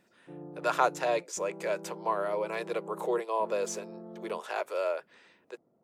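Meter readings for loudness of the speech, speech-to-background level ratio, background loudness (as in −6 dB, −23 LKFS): −32.5 LKFS, 13.5 dB, −46.0 LKFS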